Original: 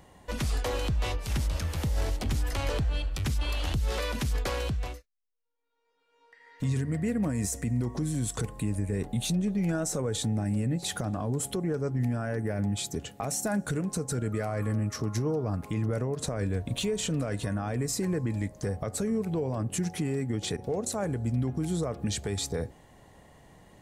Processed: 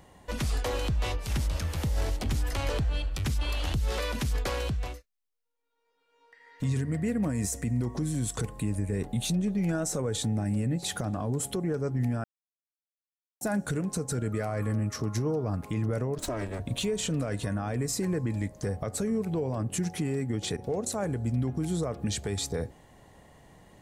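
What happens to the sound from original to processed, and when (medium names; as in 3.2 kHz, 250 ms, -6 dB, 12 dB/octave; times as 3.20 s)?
12.24–13.41 s: mute
16.18–16.60 s: comb filter that takes the minimum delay 3.1 ms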